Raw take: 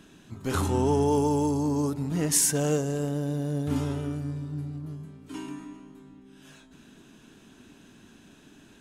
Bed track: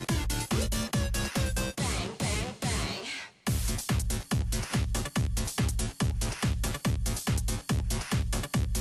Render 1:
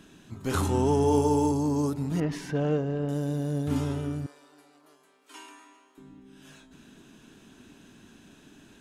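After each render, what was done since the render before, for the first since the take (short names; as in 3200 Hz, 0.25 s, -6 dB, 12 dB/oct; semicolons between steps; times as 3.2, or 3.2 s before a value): 0.98–1.52 flutter echo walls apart 10 m, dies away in 0.42 s; 2.2–3.09 air absorption 330 m; 4.26–5.98 Bessel high-pass 710 Hz, order 4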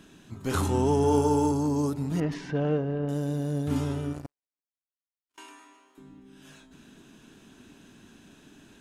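1.03–1.67 bell 1400 Hz +8.5 dB 0.36 oct; 2.33–3.06 LPF 5500 Hz -> 2800 Hz; 4.13–5.38 power-law curve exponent 3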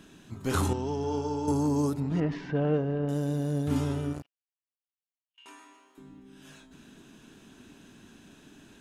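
0.73–1.48 ladder low-pass 6000 Hz, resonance 40%; 2–2.74 Bessel low-pass 3300 Hz; 4.22–5.46 band-pass 2900 Hz, Q 9.3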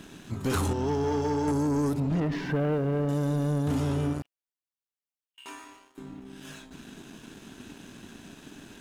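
compressor, threshold -28 dBFS, peak gain reduction 6.5 dB; sample leveller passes 2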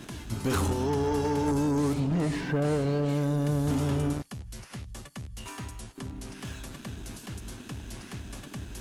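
add bed track -11.5 dB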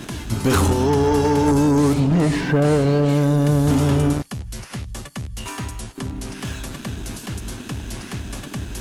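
gain +10 dB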